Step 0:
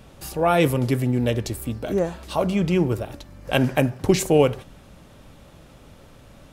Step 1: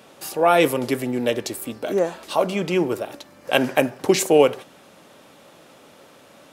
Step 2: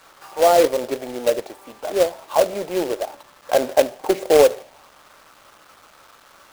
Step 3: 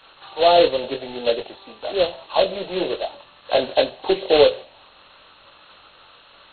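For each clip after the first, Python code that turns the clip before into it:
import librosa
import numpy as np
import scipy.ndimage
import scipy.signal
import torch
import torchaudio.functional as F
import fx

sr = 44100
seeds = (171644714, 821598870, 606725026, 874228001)

y1 = scipy.signal.sosfilt(scipy.signal.butter(2, 310.0, 'highpass', fs=sr, output='sos'), x)
y1 = F.gain(torch.from_numpy(y1), 3.5).numpy()
y2 = fx.auto_wah(y1, sr, base_hz=570.0, top_hz=1300.0, q=2.4, full_db=-18.5, direction='down')
y2 = fx.quant_companded(y2, sr, bits=4)
y2 = F.gain(torch.from_numpy(y2), 5.0).numpy()
y3 = fx.freq_compress(y2, sr, knee_hz=2500.0, ratio=4.0)
y3 = fx.chorus_voices(y3, sr, voices=6, hz=0.73, base_ms=22, depth_ms=1.3, mix_pct=35)
y3 = F.gain(torch.from_numpy(y3), 1.5).numpy()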